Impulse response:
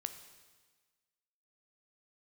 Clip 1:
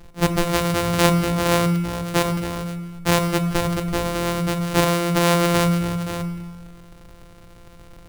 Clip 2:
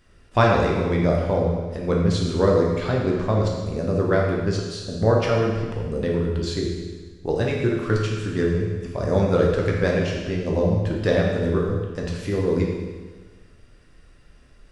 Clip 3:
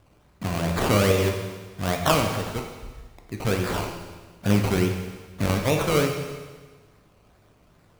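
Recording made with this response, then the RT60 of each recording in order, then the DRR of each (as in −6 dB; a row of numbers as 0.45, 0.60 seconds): 1; 1.4, 1.4, 1.4 seconds; 8.0, −2.5, 2.5 decibels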